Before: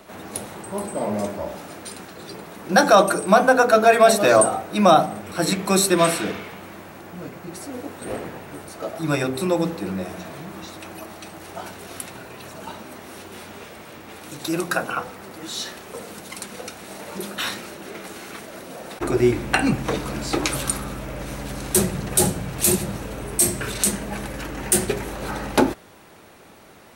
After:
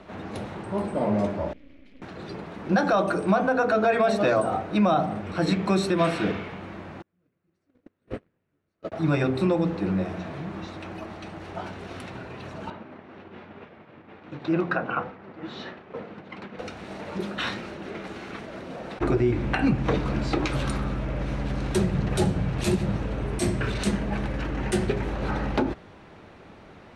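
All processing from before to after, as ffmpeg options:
-filter_complex "[0:a]asettb=1/sr,asplit=3[a][b][c];[a]atrim=end=1.534[d];[b]atrim=start=1.53:end=2.02,asetpts=PTS-STARTPTS,afade=t=in:d=0.004:c=qsin,afade=t=out:st=0.486:d=0.004:c=qsin,asplit=3[e][f][g];[e]bandpass=f=270:t=q:w=8,volume=0dB[h];[f]bandpass=f=2.29k:t=q:w=8,volume=-6dB[i];[g]bandpass=f=3.01k:t=q:w=8,volume=-9dB[j];[h][i][j]amix=inputs=3:normalize=0,aeval=exprs='max(val(0),0)':c=same[k];[c]atrim=start=2.016[l];[d][k]acrossfade=d=0.004:c1=hsin:c2=qsin[m];[m][l]acrossfade=d=0.004:c1=qsin:c2=hsin,asettb=1/sr,asplit=3[n][o][p];[n]atrim=end=7.024[q];[o]atrim=start=7.02:end=8.92,asetpts=PTS-STARTPTS,afade=t=in:d=0.004:c=qsin,afade=t=out:st=1.896:d=0.004:c=qsin,agate=range=-39dB:threshold=-28dB:ratio=16:release=100:detection=peak,equalizer=f=820:t=o:w=0.67:g=-8[r];[p]atrim=start=8.916[s];[q][r]acrossfade=d=0.004:c1=hsin:c2=qsin[t];[t][s]acrossfade=d=0.004:c1=qsin:c2=hsin,asettb=1/sr,asplit=3[u][v][w];[u]atrim=end=12.704[x];[v]atrim=start=12.7:end=16.59,asetpts=PTS-STARTPTS,afade=t=in:d=0.004:c=qsin,afade=t=out:st=3.886:d=0.004:c=qsin,agate=range=-33dB:threshold=-35dB:ratio=3:release=100:detection=peak,highpass=110,lowpass=2.7k[y];[w]atrim=start=16.586[z];[x][y]acrossfade=d=0.004:c1=hsin:c2=qsin[aa];[aa][z]acrossfade=d=0.004:c1=qsin:c2=hsin,lowpass=3.5k,lowshelf=f=210:g=8,alimiter=limit=-11.5dB:level=0:latency=1:release=146,volume=-1.5dB"

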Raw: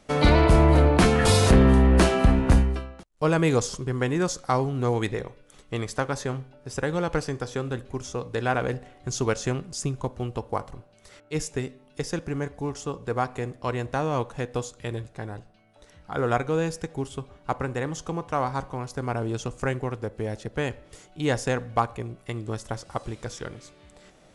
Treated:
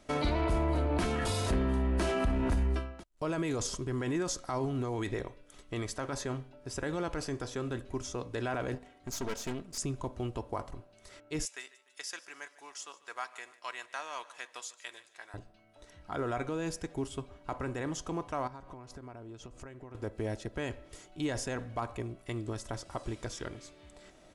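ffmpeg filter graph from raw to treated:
-filter_complex "[0:a]asettb=1/sr,asplit=3[a][b][c];[a]atrim=end=8.754[d];[b]atrim=start=8.75:end=9.78,asetpts=PTS-STARTPTS,afade=t=in:d=0.004:c=qsin,afade=t=out:st=1.026:d=0.004:c=qsin,highpass=50,aecho=1:1:4.4:0.42,atrim=end_sample=45423,aeval=exprs='(tanh(28.2*val(0)+0.75)-tanh(0.75))/28.2':c=same[e];[c]atrim=start=9.776[f];[d][e]acrossfade=d=0.004:c1=hsin:c2=qsin[g];[g][f]acrossfade=d=0.004:c1=qsin:c2=hsin,asettb=1/sr,asplit=3[h][i][j];[h]atrim=end=11.454[k];[i]atrim=start=11.45:end=15.34,asetpts=PTS-STARTPTS,afade=t=in:d=0.004:c=qsin,afade=t=out:st=3.886:d=0.004:c=qsin,highpass=1.4k,aecho=1:1:148|296|444|592:0.112|0.0516|0.0237|0.0109,atrim=end_sample=171549[l];[j]atrim=start=15.336[m];[k][l]acrossfade=d=0.004:c1=hsin:c2=qsin[n];[n][m]acrossfade=d=0.004:c1=qsin:c2=hsin,asettb=1/sr,asplit=3[o][p][q];[o]atrim=end=18.474[r];[p]atrim=start=18.47:end=19.95,asetpts=PTS-STARTPTS,afade=t=in:d=0.004:c=qsin,afade=t=out:st=1.476:d=0.004:c=qsin,highshelf=f=6.2k:g=-9,acompressor=threshold=-39dB:ratio=8:attack=3.2:release=140:knee=1:detection=peak[s];[q]atrim=start=19.946[t];[r][s]acrossfade=d=0.004:c1=hsin:c2=qsin[u];[u][t]acrossfade=d=0.004:c1=qsin:c2=hsin,alimiter=limit=-20.5dB:level=0:latency=1:release=15,aecho=1:1:3.1:0.37,volume=-3.5dB"

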